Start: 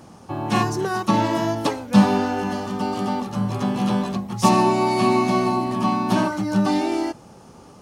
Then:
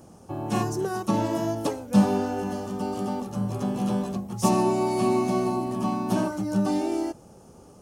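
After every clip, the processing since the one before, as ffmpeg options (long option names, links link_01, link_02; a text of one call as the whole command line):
ffmpeg -i in.wav -af "equalizer=frequency=125:width_type=o:width=1:gain=-4,equalizer=frequency=250:width_type=o:width=1:gain=-4,equalizer=frequency=1000:width_type=o:width=1:gain=-7,equalizer=frequency=2000:width_type=o:width=1:gain=-9,equalizer=frequency=4000:width_type=o:width=1:gain=-9" out.wav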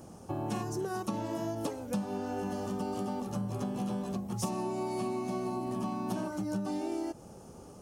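ffmpeg -i in.wav -af "acompressor=threshold=-31dB:ratio=10" out.wav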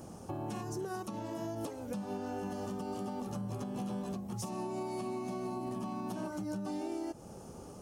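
ffmpeg -i in.wav -af "alimiter=level_in=7.5dB:limit=-24dB:level=0:latency=1:release=296,volume=-7.5dB,volume=1.5dB" out.wav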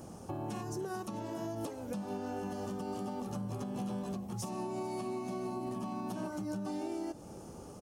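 ffmpeg -i in.wav -af "aecho=1:1:439:0.112" out.wav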